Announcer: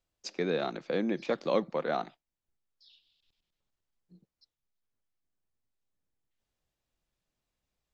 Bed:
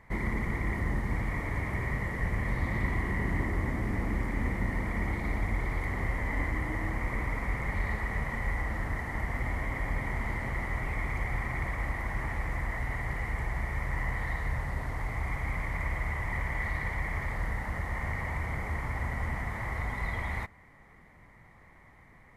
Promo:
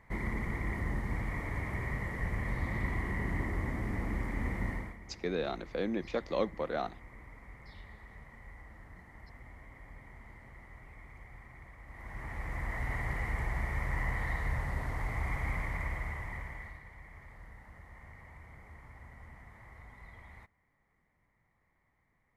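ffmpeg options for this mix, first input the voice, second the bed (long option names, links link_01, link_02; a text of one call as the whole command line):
ffmpeg -i stem1.wav -i stem2.wav -filter_complex "[0:a]adelay=4850,volume=-3.5dB[link_01];[1:a]volume=14dB,afade=type=out:start_time=4.69:duration=0.28:silence=0.16788,afade=type=in:start_time=11.86:duration=1.08:silence=0.125893,afade=type=out:start_time=15.5:duration=1.32:silence=0.133352[link_02];[link_01][link_02]amix=inputs=2:normalize=0" out.wav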